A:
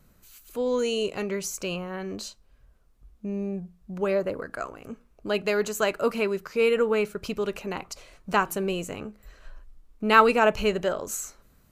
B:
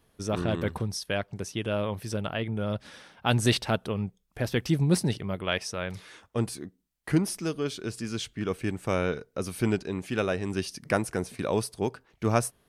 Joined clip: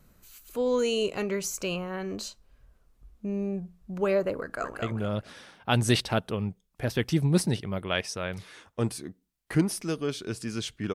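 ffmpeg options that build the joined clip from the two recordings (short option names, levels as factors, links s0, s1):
-filter_complex "[0:a]apad=whole_dur=10.94,atrim=end=10.94,atrim=end=4.822[s0];[1:a]atrim=start=2.388:end=8.51[s1];[s0][s1]acrossfade=d=0.004:c1=hsin:c2=hsin,asplit=2[s2][s3];[s3]afade=t=in:st=4.39:d=0.01,afade=t=out:st=4.82:d=0.01,aecho=0:1:220|440|660|880:0.630957|0.189287|0.0567862|0.0170358[s4];[s2][s4]amix=inputs=2:normalize=0"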